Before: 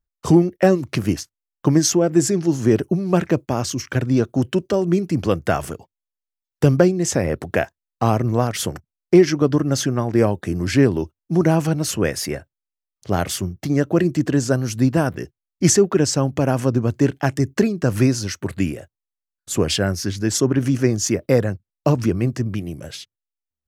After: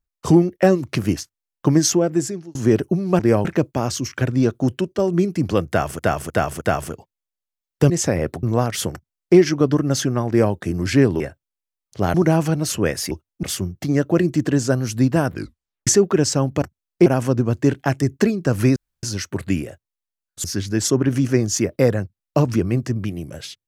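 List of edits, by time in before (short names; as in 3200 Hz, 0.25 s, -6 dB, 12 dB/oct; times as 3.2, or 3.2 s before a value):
1.96–2.55 fade out
4.41–4.72 fade out, to -6.5 dB
5.42–5.73 loop, 4 plays
6.71–6.98 cut
7.51–8.24 cut
8.74–9.18 copy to 16.43
10.09–10.35 copy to 3.19
11.01–11.33 swap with 12.3–13.24
15.14 tape stop 0.54 s
18.13 insert room tone 0.27 s
19.54–19.94 cut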